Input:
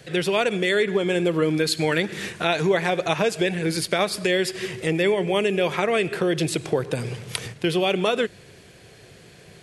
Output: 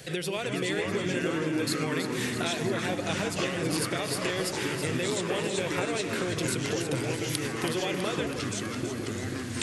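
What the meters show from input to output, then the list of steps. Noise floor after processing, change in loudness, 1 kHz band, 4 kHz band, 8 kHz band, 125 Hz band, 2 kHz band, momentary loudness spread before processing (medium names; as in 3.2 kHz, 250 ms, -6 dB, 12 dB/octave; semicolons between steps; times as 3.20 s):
-34 dBFS, -6.5 dB, -7.0 dB, -5.0 dB, +0.5 dB, -4.0 dB, -6.0 dB, 6 LU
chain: treble shelf 5.5 kHz +9.5 dB; compression 6:1, threshold -30 dBFS, peak gain reduction 14.5 dB; ever faster or slower copies 354 ms, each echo -4 st, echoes 2; echo whose repeats swap between lows and highs 163 ms, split 930 Hz, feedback 79%, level -6.5 dB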